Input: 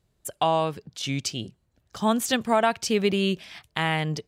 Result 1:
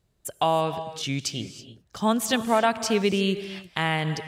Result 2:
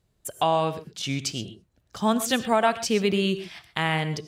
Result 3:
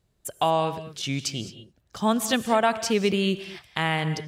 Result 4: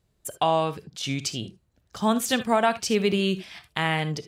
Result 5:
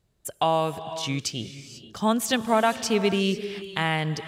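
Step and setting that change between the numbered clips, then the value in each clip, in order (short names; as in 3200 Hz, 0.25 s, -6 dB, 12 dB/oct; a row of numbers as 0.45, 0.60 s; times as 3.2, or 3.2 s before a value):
non-linear reverb, gate: 350, 150, 240, 90, 520 ms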